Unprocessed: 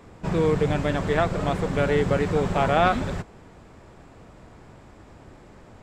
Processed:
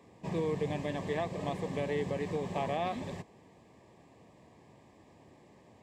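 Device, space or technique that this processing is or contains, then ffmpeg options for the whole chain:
PA system with an anti-feedback notch: -af "highpass=120,asuperstop=centerf=1400:order=4:qfactor=2.9,alimiter=limit=-14dB:level=0:latency=1:release=254,volume=-9dB"

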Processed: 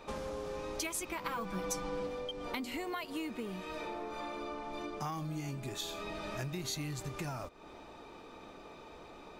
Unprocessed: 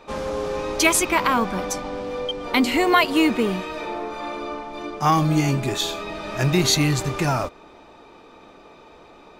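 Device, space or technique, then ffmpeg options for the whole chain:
ASMR close-microphone chain: -filter_complex "[0:a]lowshelf=f=180:g=3.5,acompressor=threshold=-33dB:ratio=6,highshelf=f=7.9k:g=6.5,asettb=1/sr,asplit=3[a][b][c];[a]atrim=end=1.244[d];[b]atrim=start=1.24:end=2.07,asetpts=PTS-STARTPTS,afade=t=in:d=0.004:c=qsin,afade=t=out:st=0.826:d=0.004:c=qsin,aecho=1:1:6:0.89,atrim=end_sample=36603[e];[c]atrim=start=2.066[f];[d][e]acrossfade=d=0.004:c1=hsin:c2=qsin[g];[g][f]acrossfade=d=0.004:c1=qsin:c2=hsin,volume=-5dB"

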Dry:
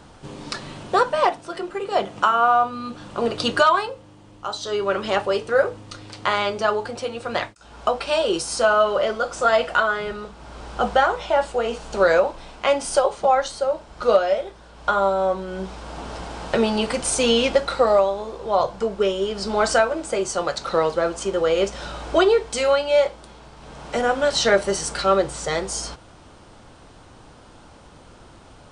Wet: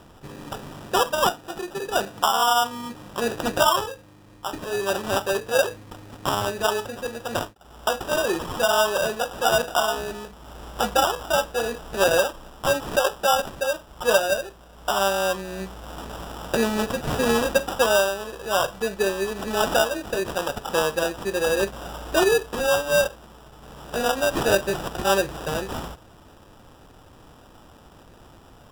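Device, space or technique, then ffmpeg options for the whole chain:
crushed at another speed: -af "asetrate=22050,aresample=44100,acrusher=samples=41:mix=1:aa=0.000001,asetrate=88200,aresample=44100,volume=-2.5dB"

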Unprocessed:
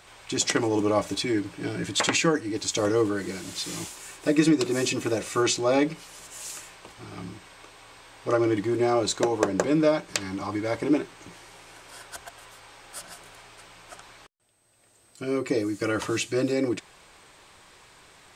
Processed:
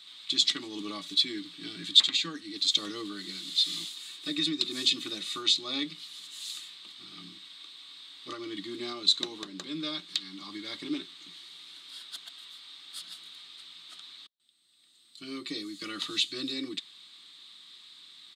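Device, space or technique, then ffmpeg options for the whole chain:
laptop speaker: -af "highpass=f=270:w=0.5412,highpass=f=270:w=1.3066,equalizer=f=1.2k:t=o:w=0.33:g=10.5,equalizer=f=2k:t=o:w=0.5:g=6.5,alimiter=limit=-11dB:level=0:latency=1:release=398,firequalizer=gain_entry='entry(140,0);entry(470,-30);entry(2400,-16);entry(3700,8);entry(5600,-13)':delay=0.05:min_phase=1,volume=5.5dB"

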